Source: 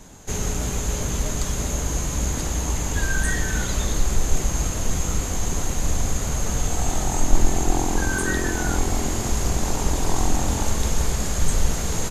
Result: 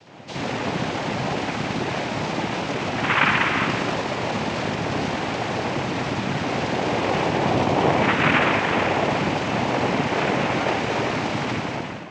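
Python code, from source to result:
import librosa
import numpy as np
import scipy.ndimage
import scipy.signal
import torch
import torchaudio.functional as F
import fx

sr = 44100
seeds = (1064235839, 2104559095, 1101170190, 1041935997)

y = fx.fade_out_tail(x, sr, length_s=0.73)
y = fx.low_shelf(y, sr, hz=230.0, db=-11.0)
y = fx.rev_spring(y, sr, rt60_s=1.2, pass_ms=(58,), chirp_ms=50, drr_db=-8.5)
y = fx.noise_vocoder(y, sr, seeds[0], bands=4)
y = fx.air_absorb(y, sr, metres=190.0)
y = F.gain(torch.from_numpy(y), 1.5).numpy()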